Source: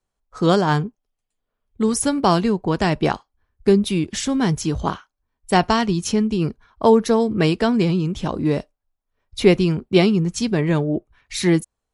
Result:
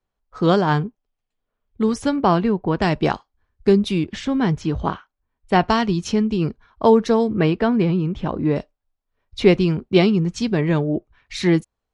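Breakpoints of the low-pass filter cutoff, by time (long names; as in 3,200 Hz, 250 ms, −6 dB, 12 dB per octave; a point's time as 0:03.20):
4,100 Hz
from 0:02.16 2,600 Hz
from 0:02.82 6,000 Hz
from 0:04.04 3,100 Hz
from 0:05.69 5,000 Hz
from 0:07.31 2,500 Hz
from 0:08.56 4,900 Hz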